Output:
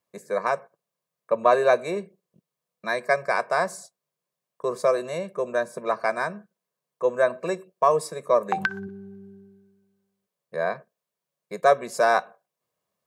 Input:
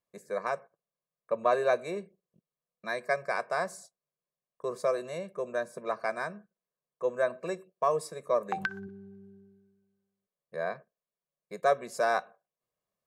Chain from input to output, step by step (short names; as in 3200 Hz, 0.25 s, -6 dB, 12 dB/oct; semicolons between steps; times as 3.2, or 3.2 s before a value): HPF 80 Hz; bell 950 Hz +3.5 dB 0.21 oct; gain +7 dB